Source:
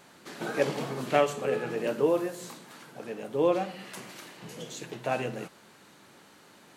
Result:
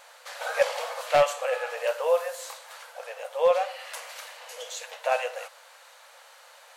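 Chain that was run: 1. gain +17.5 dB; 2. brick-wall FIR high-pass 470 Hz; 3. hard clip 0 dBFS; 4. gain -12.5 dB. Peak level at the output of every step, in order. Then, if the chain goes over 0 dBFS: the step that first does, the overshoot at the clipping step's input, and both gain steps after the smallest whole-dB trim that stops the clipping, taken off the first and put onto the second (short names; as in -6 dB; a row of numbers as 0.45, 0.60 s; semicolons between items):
+8.5, +7.5, 0.0, -12.5 dBFS; step 1, 7.5 dB; step 1 +9.5 dB, step 4 -4.5 dB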